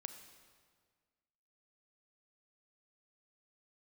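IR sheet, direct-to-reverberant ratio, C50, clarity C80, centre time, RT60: 7.5 dB, 8.5 dB, 9.5 dB, 23 ms, 1.7 s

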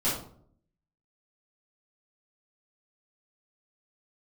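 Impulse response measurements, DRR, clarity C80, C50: −11.0 dB, 8.0 dB, 3.5 dB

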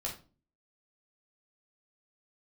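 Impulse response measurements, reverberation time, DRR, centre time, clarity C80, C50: 0.35 s, −3.0 dB, 21 ms, 14.5 dB, 8.5 dB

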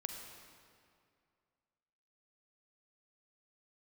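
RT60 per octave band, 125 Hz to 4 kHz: 2.4, 2.3, 2.3, 2.3, 2.0, 1.7 seconds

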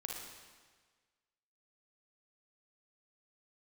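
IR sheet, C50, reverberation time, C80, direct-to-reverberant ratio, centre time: 0.0 dB, 1.5 s, 3.5 dB, −0.5 dB, 75 ms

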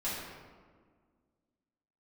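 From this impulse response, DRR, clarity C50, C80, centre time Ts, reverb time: −10.5 dB, −0.5 dB, 2.0 dB, 91 ms, 1.7 s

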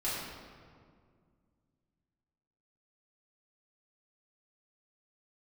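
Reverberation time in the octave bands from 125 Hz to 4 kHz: 3.0, 2.9, 2.2, 1.9, 1.5, 1.2 seconds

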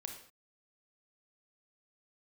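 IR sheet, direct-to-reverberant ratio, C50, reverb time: 3.0 dB, 6.0 dB, non-exponential decay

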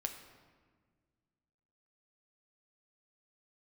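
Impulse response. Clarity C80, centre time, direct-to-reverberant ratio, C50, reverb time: 9.5 dB, 23 ms, 5.0 dB, 8.0 dB, 1.6 s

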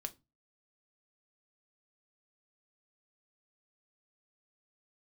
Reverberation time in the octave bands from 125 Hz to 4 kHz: 0.45, 0.35, 0.25, 0.25, 0.20, 0.20 seconds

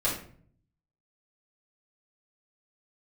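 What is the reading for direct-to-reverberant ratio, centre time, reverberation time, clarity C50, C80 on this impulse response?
−8.0 dB, 30 ms, 0.50 s, 6.0 dB, 10.0 dB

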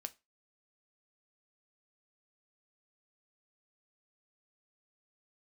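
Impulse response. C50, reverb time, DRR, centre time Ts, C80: 23.0 dB, 0.25 s, 9.5 dB, 3 ms, 30.0 dB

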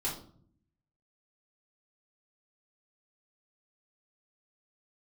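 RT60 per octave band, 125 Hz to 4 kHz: 1.0, 0.95, 0.65, 0.50, 0.35, 0.35 seconds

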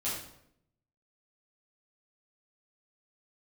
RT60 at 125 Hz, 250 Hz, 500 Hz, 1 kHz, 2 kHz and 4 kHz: 1.0, 0.90, 0.80, 0.70, 0.60, 0.55 seconds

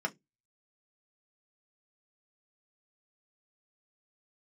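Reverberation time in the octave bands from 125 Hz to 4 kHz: 0.30, 0.25, 0.20, 0.10, 0.15, 0.15 seconds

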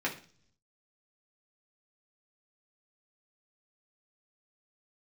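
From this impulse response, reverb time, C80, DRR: 0.45 s, 16.5 dB, −4.0 dB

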